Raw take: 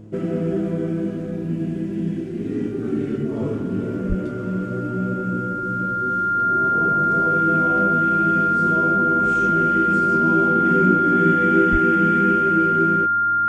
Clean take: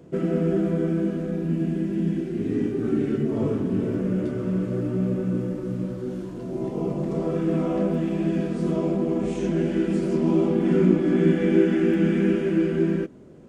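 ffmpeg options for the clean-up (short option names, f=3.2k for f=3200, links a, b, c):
-filter_complex "[0:a]bandreject=f=106.1:t=h:w=4,bandreject=f=212.2:t=h:w=4,bandreject=f=318.3:t=h:w=4,bandreject=f=1.4k:w=30,asplit=3[a][b][c];[a]afade=t=out:st=4.08:d=0.02[d];[b]highpass=f=140:w=0.5412,highpass=f=140:w=1.3066,afade=t=in:st=4.08:d=0.02,afade=t=out:st=4.2:d=0.02[e];[c]afade=t=in:st=4.2:d=0.02[f];[d][e][f]amix=inputs=3:normalize=0,asplit=3[g][h][i];[g]afade=t=out:st=11.71:d=0.02[j];[h]highpass=f=140:w=0.5412,highpass=f=140:w=1.3066,afade=t=in:st=11.71:d=0.02,afade=t=out:st=11.83:d=0.02[k];[i]afade=t=in:st=11.83:d=0.02[l];[j][k][l]amix=inputs=3:normalize=0"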